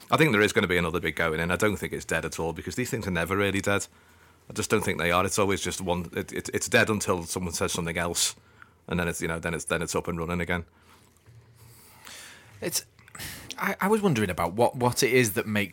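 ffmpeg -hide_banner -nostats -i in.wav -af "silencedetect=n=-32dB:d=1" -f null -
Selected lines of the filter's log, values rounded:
silence_start: 10.61
silence_end: 12.05 | silence_duration: 1.44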